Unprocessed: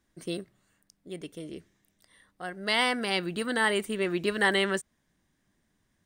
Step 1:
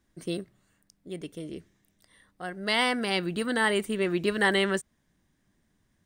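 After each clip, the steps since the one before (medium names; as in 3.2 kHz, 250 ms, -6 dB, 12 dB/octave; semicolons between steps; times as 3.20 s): bass shelf 320 Hz +4 dB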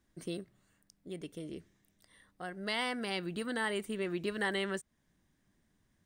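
compression 1.5:1, threshold -39 dBFS, peak gain reduction 7 dB; trim -3 dB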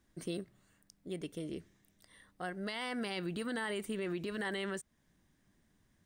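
peak limiter -31 dBFS, peak gain reduction 9.5 dB; trim +2 dB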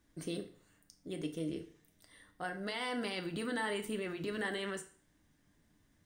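FDN reverb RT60 0.47 s, low-frequency decay 0.95×, high-frequency decay 0.95×, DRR 5 dB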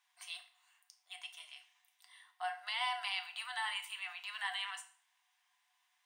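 rippled Chebyshev high-pass 710 Hz, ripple 9 dB; trim +6 dB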